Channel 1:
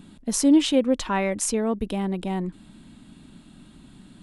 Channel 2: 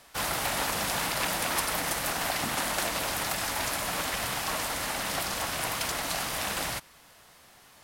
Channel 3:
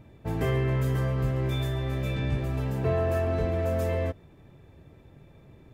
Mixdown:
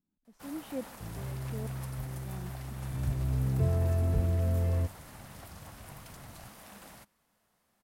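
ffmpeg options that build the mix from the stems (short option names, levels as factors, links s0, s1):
-filter_complex "[0:a]lowpass=2900,aeval=exprs='val(0)*pow(10,-26*if(lt(mod(-1.2*n/s,1),2*abs(-1.2)/1000),1-mod(-1.2*n/s,1)/(2*abs(-1.2)/1000),(mod(-1.2*n/s,1)-2*abs(-1.2)/1000)/(1-2*abs(-1.2)/1000))/20)':c=same,volume=0.188[s0];[1:a]equalizer=f=210:t=o:w=0.31:g=9.5,adelay=250,volume=0.141[s1];[2:a]bass=f=250:g=13,treble=f=4000:g=7,adelay=750,volume=0.299,afade=t=in:st=2.76:d=0.71:silence=0.237137[s2];[s0][s1][s2]amix=inputs=3:normalize=0,equalizer=f=3700:t=o:w=2.6:g=-6.5"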